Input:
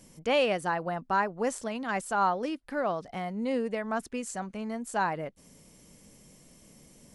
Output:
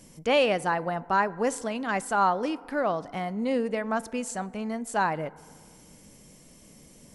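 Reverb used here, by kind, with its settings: FDN reverb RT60 2 s, high-frequency decay 0.35×, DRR 18.5 dB; trim +3 dB

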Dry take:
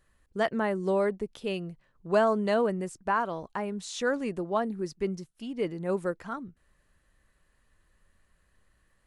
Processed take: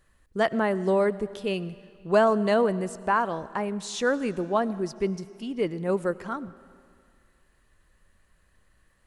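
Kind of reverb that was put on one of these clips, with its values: algorithmic reverb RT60 2.1 s, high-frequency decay 0.95×, pre-delay 55 ms, DRR 17.5 dB; trim +3.5 dB

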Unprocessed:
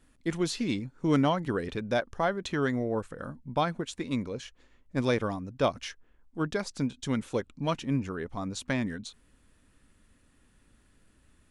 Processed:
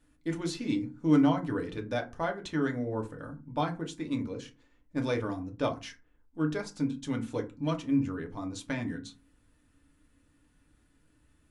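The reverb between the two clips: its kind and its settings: FDN reverb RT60 0.3 s, low-frequency decay 1.55×, high-frequency decay 0.55×, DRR 2 dB; trim -6 dB

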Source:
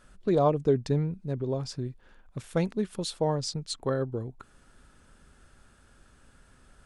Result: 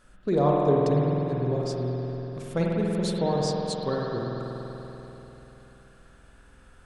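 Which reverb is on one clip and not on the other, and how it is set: spring tank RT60 3.8 s, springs 48 ms, chirp 65 ms, DRR -3 dB; trim -1 dB

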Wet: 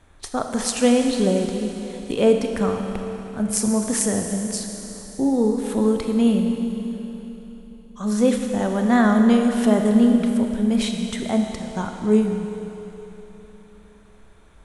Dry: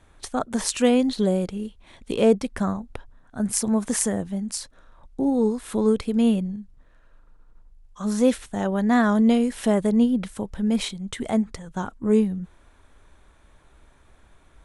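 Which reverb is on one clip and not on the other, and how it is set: Schroeder reverb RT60 3.6 s, combs from 26 ms, DRR 3.5 dB; trim +1 dB

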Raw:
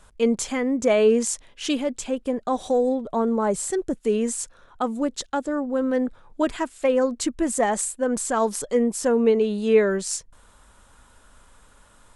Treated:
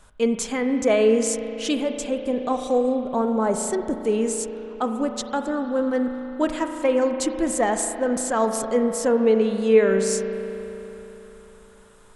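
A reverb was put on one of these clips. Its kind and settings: spring tank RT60 3.5 s, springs 36 ms, chirp 60 ms, DRR 6 dB

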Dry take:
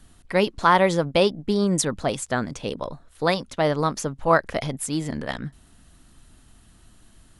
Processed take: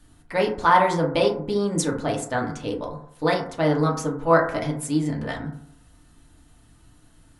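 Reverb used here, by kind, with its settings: FDN reverb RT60 0.63 s, low-frequency decay 0.9×, high-frequency decay 0.3×, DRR -1.5 dB; trim -4.5 dB

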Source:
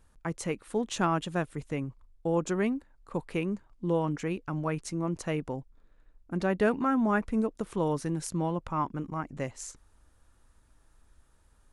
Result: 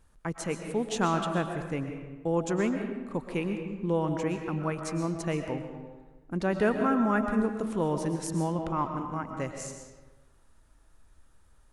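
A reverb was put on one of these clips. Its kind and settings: algorithmic reverb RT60 1.3 s, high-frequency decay 0.65×, pre-delay 85 ms, DRR 5 dB

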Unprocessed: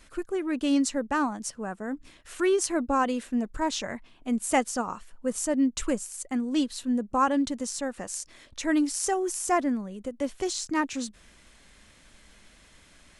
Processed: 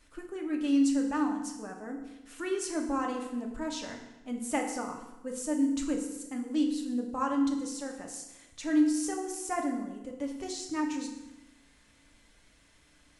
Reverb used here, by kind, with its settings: FDN reverb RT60 1 s, low-frequency decay 1.2×, high-frequency decay 0.85×, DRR 1.5 dB; trim -9 dB

